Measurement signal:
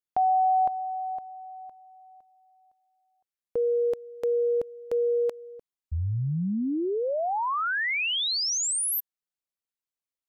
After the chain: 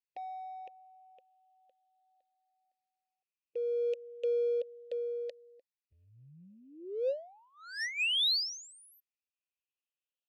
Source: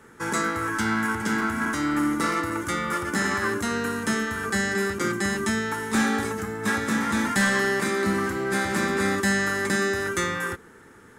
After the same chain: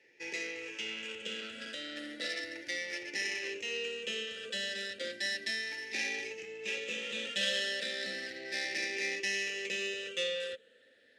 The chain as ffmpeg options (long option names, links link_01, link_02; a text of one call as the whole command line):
ffmpeg -i in.wav -filter_complex "[0:a]afftfilt=real='re*pow(10,11/40*sin(2*PI*(0.75*log(max(b,1)*sr/1024/100)/log(2)-(0.34)*(pts-256)/sr)))':imag='im*pow(10,11/40*sin(2*PI*(0.75*log(max(b,1)*sr/1024/100)/log(2)-(0.34)*(pts-256)/sr)))':win_size=1024:overlap=0.75,asplit=3[link_01][link_02][link_03];[link_01]bandpass=frequency=530:width_type=q:width=8,volume=0dB[link_04];[link_02]bandpass=frequency=1840:width_type=q:width=8,volume=-6dB[link_05];[link_03]bandpass=frequency=2480:width_type=q:width=8,volume=-9dB[link_06];[link_04][link_05][link_06]amix=inputs=3:normalize=0,acrossover=split=5700[link_07][link_08];[link_08]alimiter=level_in=34dB:limit=-24dB:level=0:latency=1,volume=-34dB[link_09];[link_07][link_09]amix=inputs=2:normalize=0,adynamicsmooth=sensitivity=3.5:basefreq=3500,aexciter=amount=11.3:drive=8.4:freq=2500,volume=-4.5dB" out.wav